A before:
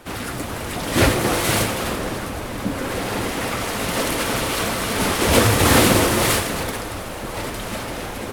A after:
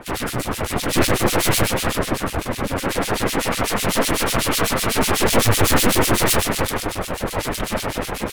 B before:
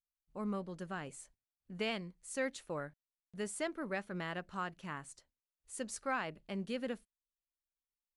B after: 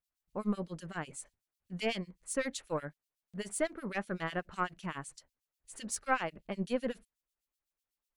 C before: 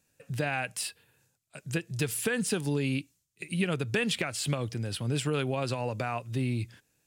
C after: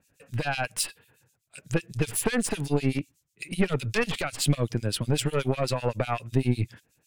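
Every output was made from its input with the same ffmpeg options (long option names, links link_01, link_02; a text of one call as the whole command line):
ffmpeg -i in.wav -filter_complex "[0:a]asoftclip=type=tanh:threshold=-19dB,aeval=exprs='0.112*(cos(1*acos(clip(val(0)/0.112,-1,1)))-cos(1*PI/2))+0.0501*(cos(2*acos(clip(val(0)/0.112,-1,1)))-cos(2*PI/2))':channel_layout=same,acrossover=split=2300[link_01][link_02];[link_01]aeval=exprs='val(0)*(1-1/2+1/2*cos(2*PI*8*n/s))':channel_layout=same[link_03];[link_02]aeval=exprs='val(0)*(1-1/2-1/2*cos(2*PI*8*n/s))':channel_layout=same[link_04];[link_03][link_04]amix=inputs=2:normalize=0,volume=8.5dB" out.wav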